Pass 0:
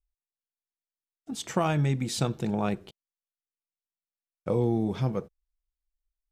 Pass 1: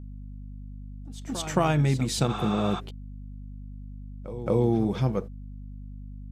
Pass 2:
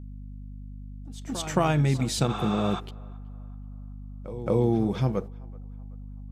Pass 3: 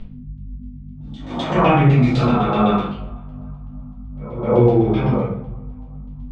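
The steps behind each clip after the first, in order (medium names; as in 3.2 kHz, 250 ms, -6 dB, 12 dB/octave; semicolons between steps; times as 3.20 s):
pre-echo 221 ms -14 dB; spectral replace 2.32–2.77 s, 680–9000 Hz before; hum 50 Hz, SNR 11 dB; trim +2.5 dB
band-passed feedback delay 379 ms, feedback 49%, band-pass 960 Hz, level -23 dB
phase randomisation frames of 200 ms; LFO low-pass saw down 7.9 Hz 780–3300 Hz; reverberation RT60 0.55 s, pre-delay 4 ms, DRR -6.5 dB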